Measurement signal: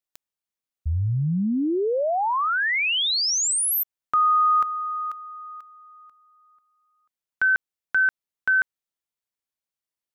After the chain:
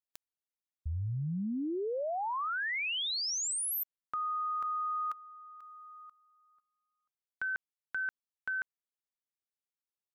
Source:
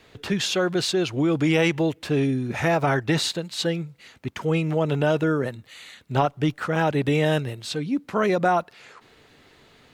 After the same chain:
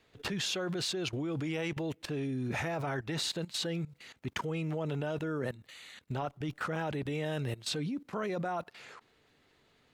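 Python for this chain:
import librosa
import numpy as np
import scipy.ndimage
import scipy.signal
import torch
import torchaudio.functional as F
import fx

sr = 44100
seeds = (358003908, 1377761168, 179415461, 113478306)

y = fx.level_steps(x, sr, step_db=17)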